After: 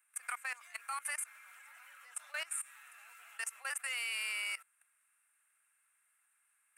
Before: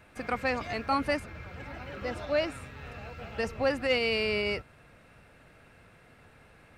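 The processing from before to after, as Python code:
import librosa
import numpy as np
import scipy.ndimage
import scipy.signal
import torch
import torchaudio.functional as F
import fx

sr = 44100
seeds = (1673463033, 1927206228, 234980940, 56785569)

y = scipy.signal.sosfilt(scipy.signal.butter(4, 1200.0, 'highpass', fs=sr, output='sos'), x)
y = fx.high_shelf_res(y, sr, hz=6600.0, db=13.5, q=3.0)
y = fx.level_steps(y, sr, step_db=19)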